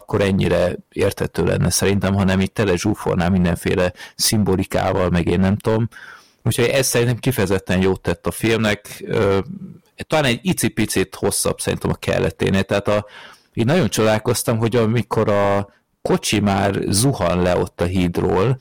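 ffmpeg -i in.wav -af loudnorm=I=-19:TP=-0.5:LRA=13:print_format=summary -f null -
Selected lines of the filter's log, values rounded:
Input Integrated:    -18.7 LUFS
Input True Peak:      -7.5 dBTP
Input LRA:             1.7 LU
Input Threshold:     -28.9 LUFS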